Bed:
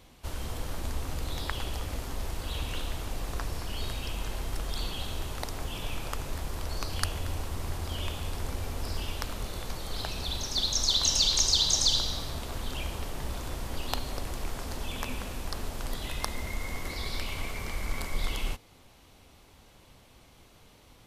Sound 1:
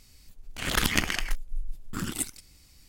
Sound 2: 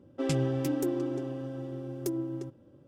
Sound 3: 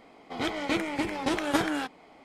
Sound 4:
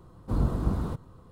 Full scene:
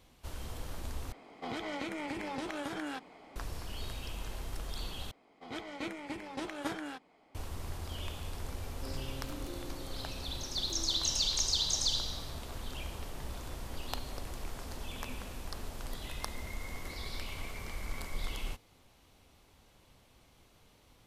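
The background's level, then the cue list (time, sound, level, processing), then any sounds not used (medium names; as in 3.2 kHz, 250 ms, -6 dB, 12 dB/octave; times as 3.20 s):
bed -6.5 dB
1.12 s: replace with 3 -1 dB + compression 8:1, threshold -33 dBFS
5.11 s: replace with 3 -11.5 dB
8.64 s: add 2 -15 dB + peak limiter -22 dBFS
not used: 1, 4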